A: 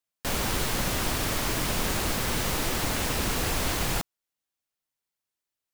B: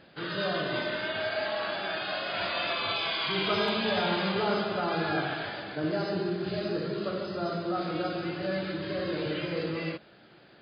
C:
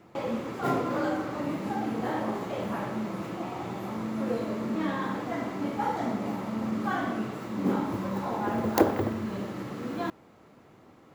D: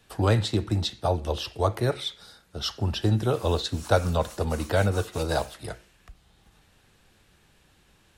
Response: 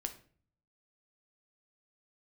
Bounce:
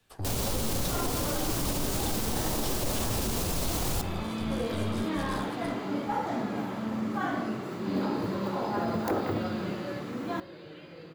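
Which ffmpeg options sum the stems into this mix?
-filter_complex "[0:a]equalizer=frequency=1800:width=0.9:gain=-10.5,volume=-0.5dB,asplit=2[link_01][link_02];[link_02]volume=-3.5dB[link_03];[1:a]adelay=1400,volume=-8.5dB,afade=type=in:start_time=7.57:duration=0.46:silence=0.316228,afade=type=out:start_time=9.74:duration=0.41:silence=0.281838,asplit=2[link_04][link_05];[link_05]volume=-3dB[link_06];[2:a]asoftclip=type=tanh:threshold=-13dB,adelay=300,volume=-3.5dB,asplit=2[link_07][link_08];[link_08]volume=-8.5dB[link_09];[3:a]acrossover=split=160|3000[link_10][link_11][link_12];[link_11]acompressor=threshold=-36dB:ratio=6[link_13];[link_10][link_13][link_12]amix=inputs=3:normalize=0,aeval=exprs='0.168*(cos(1*acos(clip(val(0)/0.168,-1,1)))-cos(1*PI/2))+0.0188*(cos(8*acos(clip(val(0)/0.168,-1,1)))-cos(8*PI/2))':channel_layout=same,volume=-11.5dB,asplit=2[link_14][link_15];[link_15]volume=-7.5dB[link_16];[4:a]atrim=start_sample=2205[link_17];[link_03][link_06][link_09][link_16]amix=inputs=4:normalize=0[link_18];[link_18][link_17]afir=irnorm=-1:irlink=0[link_19];[link_01][link_04][link_07][link_14][link_19]amix=inputs=5:normalize=0,alimiter=limit=-20dB:level=0:latency=1:release=57"

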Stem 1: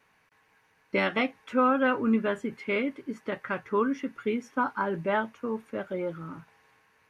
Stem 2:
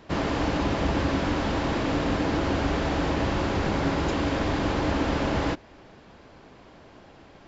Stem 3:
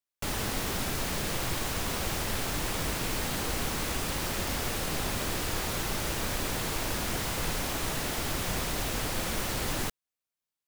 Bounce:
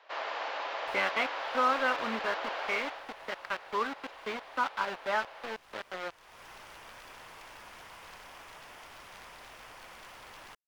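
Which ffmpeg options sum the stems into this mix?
ffmpeg -i stem1.wav -i stem2.wav -i stem3.wav -filter_complex "[0:a]aeval=exprs='val(0)*gte(abs(val(0)),0.0355)':channel_layout=same,volume=-1dB,asplit=2[link_01][link_02];[1:a]highpass=frequency=480:width=0.5412,highpass=frequency=480:width=1.3066,volume=-4dB,afade=type=out:start_time=2.65:duration=0.42:silence=0.223872[link_03];[2:a]equalizer=frequency=1000:width_type=o:width=0.33:gain=4,equalizer=frequency=4000:width_type=o:width=0.33:gain=-10,equalizer=frequency=10000:width_type=o:width=0.33:gain=8,equalizer=frequency=16000:width_type=o:width=0.33:gain=9,aeval=exprs='(mod(11.2*val(0)+1,2)-1)/11.2':channel_layout=same,adelay=650,volume=-13dB[link_04];[link_02]apad=whole_len=499220[link_05];[link_04][link_05]sidechaincompress=threshold=-41dB:ratio=10:attack=9.3:release=390[link_06];[link_01][link_03][link_06]amix=inputs=3:normalize=0,acrossover=split=550 4800:gain=0.178 1 0.1[link_07][link_08][link_09];[link_07][link_08][link_09]amix=inputs=3:normalize=0" out.wav

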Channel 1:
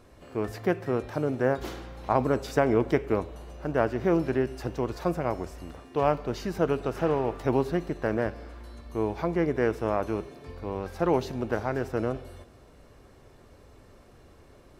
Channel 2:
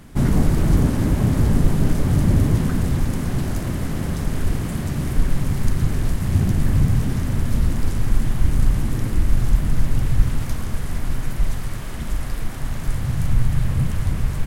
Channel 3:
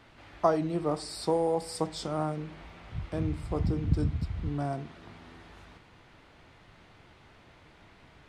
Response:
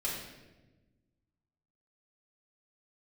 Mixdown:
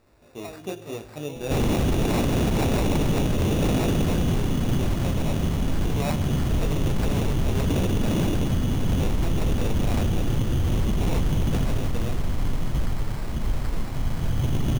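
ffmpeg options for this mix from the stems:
-filter_complex "[0:a]highshelf=frequency=3900:gain=11,flanger=delay=18.5:depth=3.6:speed=1,volume=-4dB,asplit=2[link_01][link_02];[link_02]volume=-19dB[link_03];[1:a]adelay=1350,volume=0.5dB[link_04];[2:a]volume=-15.5dB[link_05];[3:a]atrim=start_sample=2205[link_06];[link_03][link_06]afir=irnorm=-1:irlink=0[link_07];[link_01][link_04][link_05][link_07]amix=inputs=4:normalize=0,equalizer=frequency=1700:width_type=o:width=0.83:gain=-9.5,acrusher=samples=14:mix=1:aa=0.000001,aeval=exprs='0.15*(abs(mod(val(0)/0.15+3,4)-2)-1)':channel_layout=same"

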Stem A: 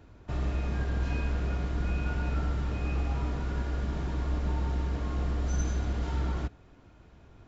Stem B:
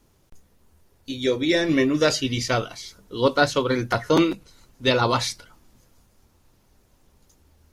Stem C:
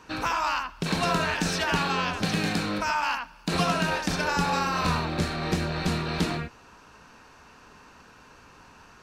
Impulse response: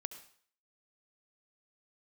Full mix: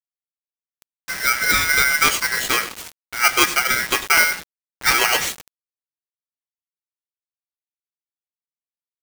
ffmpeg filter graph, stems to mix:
-filter_complex "[0:a]acompressor=threshold=-46dB:ratio=1.5,volume=-18.5dB[link_01];[1:a]aeval=exprs='val(0)*sgn(sin(2*PI*1800*n/s))':channel_layout=same,volume=2.5dB,asplit=2[link_02][link_03];[link_03]volume=-16dB[link_04];[2:a]acompressor=threshold=-38dB:ratio=2.5,volume=-8.5dB[link_05];[link_04]aecho=0:1:99|198|297|396:1|0.31|0.0961|0.0298[link_06];[link_01][link_02][link_05][link_06]amix=inputs=4:normalize=0,acrusher=bits=4:mix=0:aa=0.000001"

